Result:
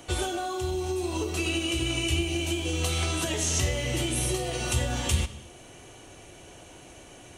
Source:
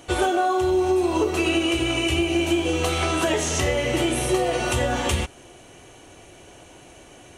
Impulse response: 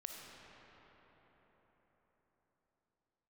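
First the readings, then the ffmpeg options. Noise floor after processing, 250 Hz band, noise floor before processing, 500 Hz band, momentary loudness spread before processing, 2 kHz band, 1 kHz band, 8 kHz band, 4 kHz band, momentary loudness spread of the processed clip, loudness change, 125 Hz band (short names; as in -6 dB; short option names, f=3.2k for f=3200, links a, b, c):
-49 dBFS, -8.5 dB, -48 dBFS, -10.0 dB, 2 LU, -6.5 dB, -11.0 dB, 0.0 dB, -3.0 dB, 21 LU, -6.0 dB, -0.5 dB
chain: -filter_complex "[0:a]acrossover=split=200|3000[a][b][c];[b]acompressor=threshold=-52dB:ratio=1.5[d];[a][d][c]amix=inputs=3:normalize=0,asplit=2[e][f];[1:a]atrim=start_sample=2205,afade=t=out:st=0.29:d=0.01,atrim=end_sample=13230[g];[f][g]afir=irnorm=-1:irlink=0,volume=-2.5dB[h];[e][h]amix=inputs=2:normalize=0,volume=-3dB"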